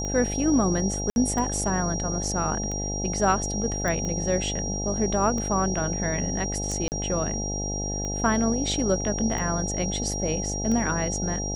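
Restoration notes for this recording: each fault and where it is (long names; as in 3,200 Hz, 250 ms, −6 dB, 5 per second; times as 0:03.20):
mains buzz 50 Hz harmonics 17 −31 dBFS
scratch tick 45 rpm −20 dBFS
whistle 5,700 Hz −31 dBFS
0:01.10–0:01.16: drop-out 61 ms
0:03.88: click −16 dBFS
0:06.88–0:06.92: drop-out 39 ms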